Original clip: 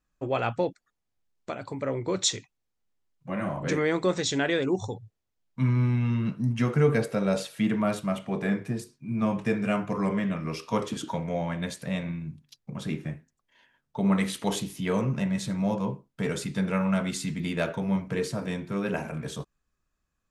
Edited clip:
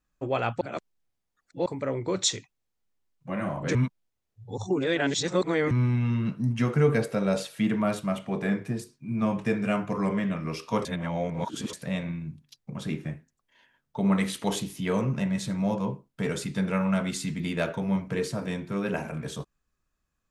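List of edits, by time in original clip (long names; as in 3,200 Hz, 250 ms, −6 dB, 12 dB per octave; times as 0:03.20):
0:00.61–0:01.66: reverse
0:03.75–0:05.71: reverse
0:10.85–0:11.73: reverse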